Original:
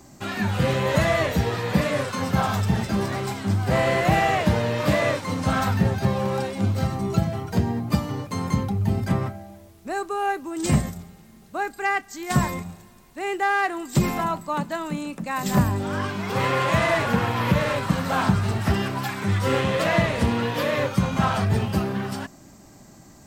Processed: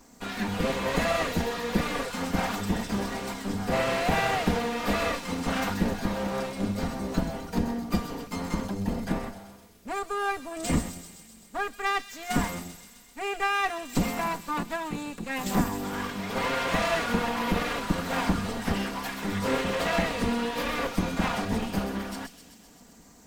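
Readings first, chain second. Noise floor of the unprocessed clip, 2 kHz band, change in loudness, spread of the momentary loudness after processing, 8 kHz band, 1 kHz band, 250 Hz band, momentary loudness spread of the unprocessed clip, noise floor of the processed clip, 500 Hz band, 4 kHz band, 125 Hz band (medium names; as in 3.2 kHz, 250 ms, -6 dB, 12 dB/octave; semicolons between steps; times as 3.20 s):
-49 dBFS, -4.0 dB, -5.5 dB, 9 LU, -2.0 dB, -4.5 dB, -4.0 dB, 8 LU, -53 dBFS, -5.5 dB, -2.0 dB, -11.0 dB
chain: comb filter that takes the minimum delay 4.2 ms; feedback echo behind a high-pass 129 ms, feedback 71%, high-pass 4.1 kHz, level -6.5 dB; trim -3.5 dB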